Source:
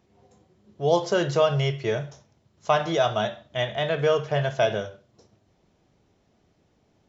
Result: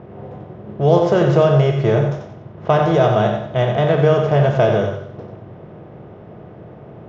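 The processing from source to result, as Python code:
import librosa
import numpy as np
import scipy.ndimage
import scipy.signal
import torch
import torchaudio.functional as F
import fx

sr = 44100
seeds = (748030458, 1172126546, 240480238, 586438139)

p1 = fx.bin_compress(x, sr, power=0.6)
p2 = fx.low_shelf(p1, sr, hz=360.0, db=9.0)
p3 = fx.env_lowpass(p2, sr, base_hz=1900.0, full_db=-16.5)
p4 = fx.high_shelf(p3, sr, hz=2800.0, db=-11.5)
p5 = p4 + fx.echo_feedback(p4, sr, ms=91, feedback_pct=30, wet_db=-7.0, dry=0)
y = F.gain(torch.from_numpy(p5), 2.0).numpy()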